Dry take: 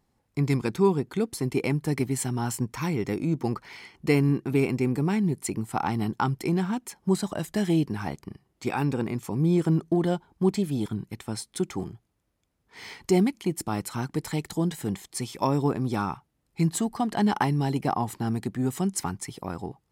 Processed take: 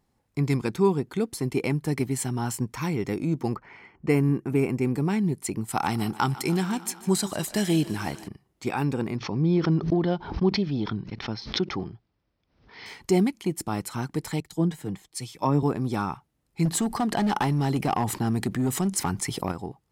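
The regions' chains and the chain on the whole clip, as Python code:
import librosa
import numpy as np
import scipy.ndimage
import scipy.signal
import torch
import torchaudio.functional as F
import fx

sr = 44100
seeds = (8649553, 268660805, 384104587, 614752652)

y = fx.chain(x, sr, fx.env_lowpass(base_hz=2200.0, full_db=-22.5),
    fx.peak_eq(hz=3900.0, db=-11.5, octaves=0.81), at=(3.56, 4.82))
y = fx.chain(y, sr, fx.high_shelf(hz=2500.0, db=9.5),
    fx.echo_thinned(ms=150, feedback_pct=78, hz=210.0, wet_db=-17.5), at=(5.68, 8.28))
y = fx.chain(y, sr, fx.steep_lowpass(hz=5600.0, slope=72),
    fx.pre_swell(db_per_s=100.0), at=(9.16, 12.86))
y = fx.chain(y, sr, fx.high_shelf(hz=3200.0, db=-6.5),
    fx.comb(ms=6.5, depth=0.33),
    fx.band_widen(depth_pct=70), at=(14.4, 15.63))
y = fx.chain(y, sr, fx.overload_stage(gain_db=20.5),
    fx.env_flatten(amount_pct=50), at=(16.65, 19.52))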